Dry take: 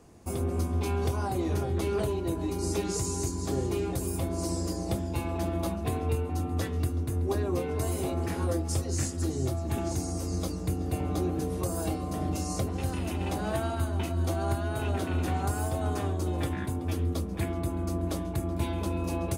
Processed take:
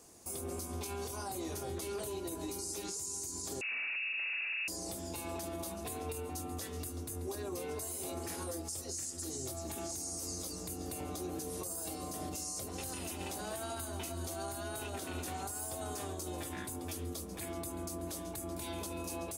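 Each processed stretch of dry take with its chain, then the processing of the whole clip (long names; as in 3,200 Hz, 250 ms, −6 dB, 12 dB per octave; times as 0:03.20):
0:03.61–0:04.68: low-shelf EQ 140 Hz +9 dB + gain into a clipping stage and back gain 33.5 dB + voice inversion scrambler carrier 2,700 Hz
whole clip: bass and treble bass −9 dB, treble +14 dB; downward compressor 2.5 to 1, threshold −31 dBFS; brickwall limiter −27 dBFS; level −4 dB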